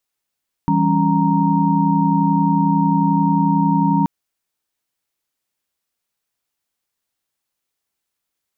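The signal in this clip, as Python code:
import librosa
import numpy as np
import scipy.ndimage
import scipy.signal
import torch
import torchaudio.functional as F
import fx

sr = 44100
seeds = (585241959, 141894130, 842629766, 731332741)

y = fx.chord(sr, length_s=3.38, notes=(52, 55, 61, 82), wave='sine', level_db=-18.5)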